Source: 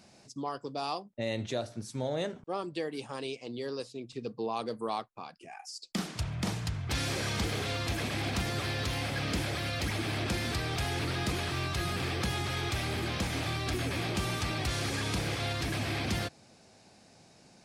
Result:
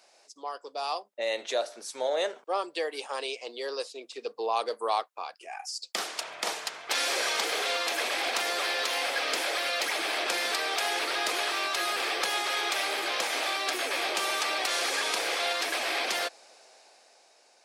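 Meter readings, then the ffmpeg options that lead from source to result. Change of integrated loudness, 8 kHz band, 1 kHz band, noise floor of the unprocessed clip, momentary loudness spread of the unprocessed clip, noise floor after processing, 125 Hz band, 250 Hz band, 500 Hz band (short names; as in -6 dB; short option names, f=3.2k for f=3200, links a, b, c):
+4.5 dB, +7.0 dB, +6.5 dB, -59 dBFS, 7 LU, -61 dBFS, under -35 dB, -9.5 dB, +4.0 dB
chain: -af "highpass=f=470:w=0.5412,highpass=f=470:w=1.3066,dynaudnorm=f=190:g=11:m=7dB"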